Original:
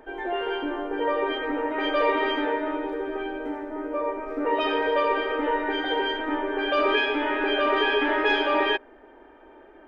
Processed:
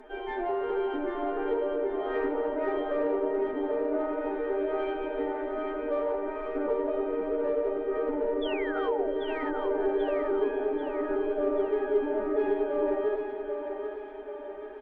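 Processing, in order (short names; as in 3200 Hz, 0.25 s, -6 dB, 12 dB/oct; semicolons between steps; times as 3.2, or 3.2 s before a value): treble ducked by the level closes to 480 Hz, closed at -21.5 dBFS; comb 4.8 ms, depth 45%; flange 1.9 Hz, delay 0.6 ms, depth 6.7 ms, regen -88%; in parallel at -5 dB: soft clip -31.5 dBFS, distortion -12 dB; on the sum: painted sound fall, 5.61–6.18, 370–3600 Hz -38 dBFS; time stretch by phase-locked vocoder 1.5×; on a send: split-band echo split 340 Hz, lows 0.281 s, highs 0.788 s, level -6 dB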